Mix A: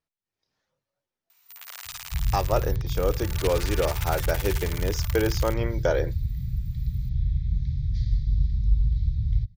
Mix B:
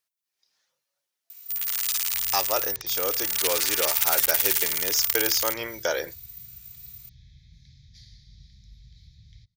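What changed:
second sound -10.0 dB; master: add tilt +4.5 dB/oct

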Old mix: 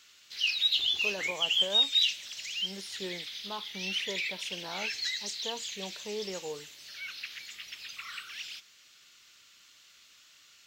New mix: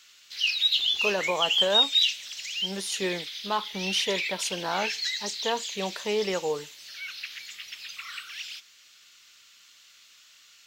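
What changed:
speech +11.5 dB; master: add tilt shelf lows -3.5 dB, about 690 Hz

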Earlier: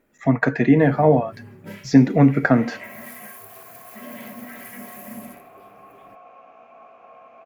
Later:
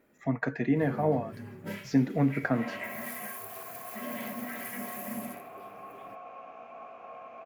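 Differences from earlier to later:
speech -11.5 dB; first sound: add low shelf 65 Hz -10 dB; reverb: on, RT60 1.3 s

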